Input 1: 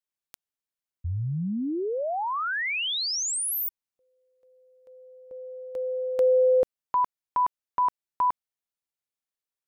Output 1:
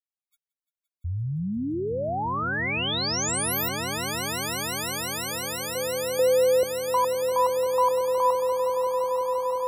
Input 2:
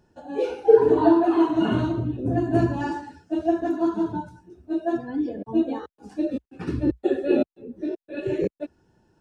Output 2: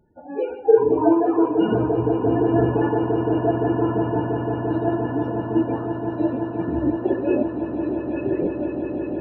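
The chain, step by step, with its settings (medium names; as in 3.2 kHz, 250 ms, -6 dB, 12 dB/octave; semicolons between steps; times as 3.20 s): loudest bins only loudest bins 32; echo with a slow build-up 172 ms, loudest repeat 8, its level -11.5 dB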